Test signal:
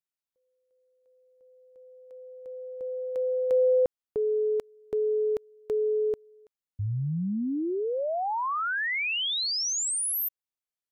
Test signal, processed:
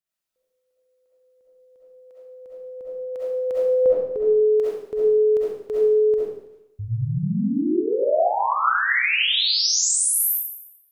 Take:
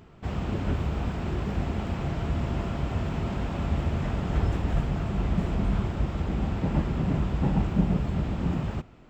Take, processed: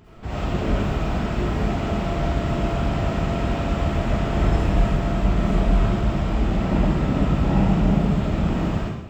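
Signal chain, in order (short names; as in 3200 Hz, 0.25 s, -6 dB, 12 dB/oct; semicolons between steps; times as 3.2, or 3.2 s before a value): digital reverb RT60 0.8 s, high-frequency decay 1×, pre-delay 25 ms, DRR -7.5 dB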